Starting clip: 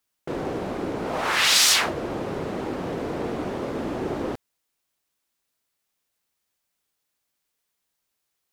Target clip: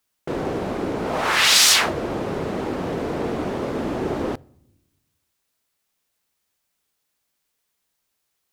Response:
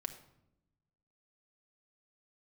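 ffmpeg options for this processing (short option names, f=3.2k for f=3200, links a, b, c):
-filter_complex "[0:a]asplit=2[a][b];[b]equalizer=f=82:t=o:w=1.2:g=10[c];[1:a]atrim=start_sample=2205[d];[c][d]afir=irnorm=-1:irlink=0,volume=-14dB[e];[a][e]amix=inputs=2:normalize=0,volume=2dB"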